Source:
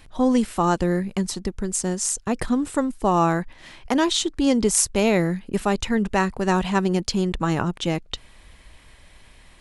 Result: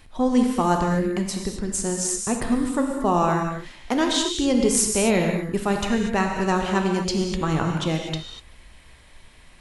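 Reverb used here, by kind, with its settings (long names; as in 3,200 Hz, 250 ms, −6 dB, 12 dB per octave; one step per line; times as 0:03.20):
reverb whose tail is shaped and stops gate 270 ms flat, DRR 2 dB
level −2 dB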